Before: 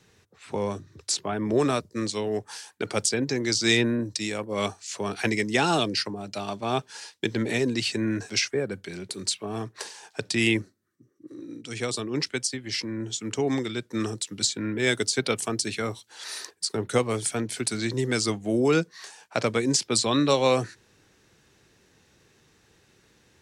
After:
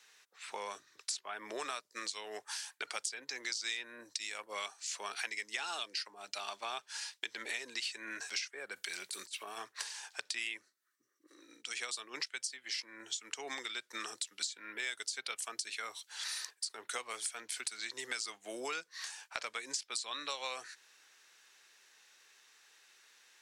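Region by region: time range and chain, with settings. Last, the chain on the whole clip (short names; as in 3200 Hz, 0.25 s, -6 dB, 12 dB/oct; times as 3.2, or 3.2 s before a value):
8.76–9.58 high shelf 7800 Hz +11 dB + negative-ratio compressor -34 dBFS, ratio -0.5
whole clip: HPF 1200 Hz 12 dB/oct; compressor 5:1, threshold -38 dBFS; gain +1 dB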